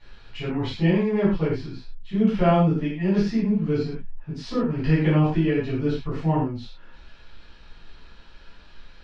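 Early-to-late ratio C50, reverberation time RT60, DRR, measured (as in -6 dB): 1.5 dB, no single decay rate, -11.5 dB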